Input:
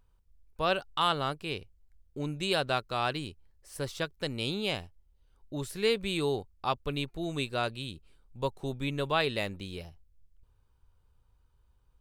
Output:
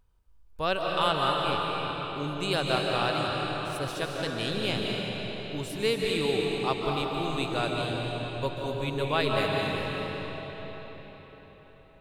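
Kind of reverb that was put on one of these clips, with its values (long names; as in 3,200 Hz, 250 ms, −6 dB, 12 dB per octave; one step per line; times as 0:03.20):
comb and all-pass reverb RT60 4.9 s, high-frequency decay 0.8×, pre-delay 110 ms, DRR −2 dB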